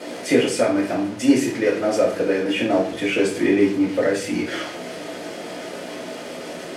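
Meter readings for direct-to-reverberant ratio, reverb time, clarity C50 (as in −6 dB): −6.0 dB, 0.45 s, 6.5 dB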